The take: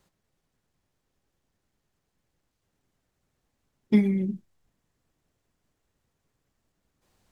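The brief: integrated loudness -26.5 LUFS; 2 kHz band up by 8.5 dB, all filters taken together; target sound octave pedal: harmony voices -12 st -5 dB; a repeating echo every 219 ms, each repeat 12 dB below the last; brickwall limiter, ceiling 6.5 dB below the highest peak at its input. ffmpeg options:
-filter_complex "[0:a]equalizer=f=2000:t=o:g=9,alimiter=limit=0.168:level=0:latency=1,aecho=1:1:219|438|657:0.251|0.0628|0.0157,asplit=2[s0][s1];[s1]asetrate=22050,aresample=44100,atempo=2,volume=0.562[s2];[s0][s2]amix=inputs=2:normalize=0,volume=1.06"

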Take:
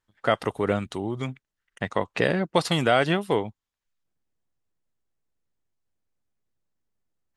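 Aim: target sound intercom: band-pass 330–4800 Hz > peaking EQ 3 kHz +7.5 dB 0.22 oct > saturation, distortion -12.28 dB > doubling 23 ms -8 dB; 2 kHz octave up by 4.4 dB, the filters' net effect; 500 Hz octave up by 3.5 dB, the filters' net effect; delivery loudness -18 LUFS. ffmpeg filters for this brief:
-filter_complex "[0:a]highpass=330,lowpass=4800,equalizer=f=500:t=o:g=5,equalizer=f=2000:t=o:g=5,equalizer=f=3000:t=o:w=0.22:g=7.5,asoftclip=threshold=0.2,asplit=2[s0][s1];[s1]adelay=23,volume=0.398[s2];[s0][s2]amix=inputs=2:normalize=0,volume=2.24"

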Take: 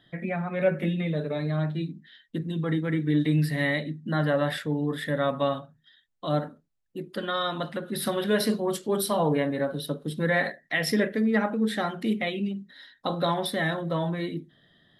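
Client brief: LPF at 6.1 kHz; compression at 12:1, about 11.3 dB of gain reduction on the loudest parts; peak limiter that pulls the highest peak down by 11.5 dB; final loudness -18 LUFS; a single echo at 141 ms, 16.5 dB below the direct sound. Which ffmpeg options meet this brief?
-af "lowpass=6100,acompressor=threshold=0.0316:ratio=12,alimiter=level_in=2.24:limit=0.0631:level=0:latency=1,volume=0.447,aecho=1:1:141:0.15,volume=11.9"

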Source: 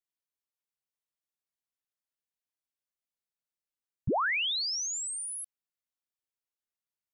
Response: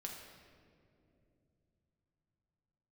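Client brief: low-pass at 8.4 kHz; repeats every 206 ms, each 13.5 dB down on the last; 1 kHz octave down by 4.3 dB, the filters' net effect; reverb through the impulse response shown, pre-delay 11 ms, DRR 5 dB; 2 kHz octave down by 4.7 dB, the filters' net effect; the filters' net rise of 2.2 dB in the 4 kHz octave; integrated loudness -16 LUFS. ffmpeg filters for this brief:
-filter_complex "[0:a]lowpass=8400,equalizer=f=1000:t=o:g=-4,equalizer=f=2000:t=o:g=-6.5,equalizer=f=4000:t=o:g=5,aecho=1:1:206|412:0.211|0.0444,asplit=2[s0][s1];[1:a]atrim=start_sample=2205,adelay=11[s2];[s1][s2]afir=irnorm=-1:irlink=0,volume=0.75[s3];[s0][s3]amix=inputs=2:normalize=0,volume=4.47"

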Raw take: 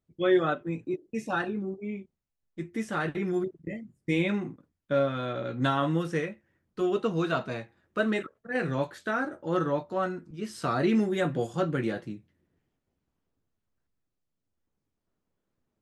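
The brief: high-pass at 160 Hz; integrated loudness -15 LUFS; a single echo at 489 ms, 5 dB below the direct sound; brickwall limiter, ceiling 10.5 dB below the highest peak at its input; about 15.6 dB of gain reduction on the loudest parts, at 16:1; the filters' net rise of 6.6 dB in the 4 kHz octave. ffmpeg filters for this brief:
-af "highpass=160,equalizer=f=4000:t=o:g=8,acompressor=threshold=0.0224:ratio=16,alimiter=level_in=2.24:limit=0.0631:level=0:latency=1,volume=0.447,aecho=1:1:489:0.562,volume=18.8"

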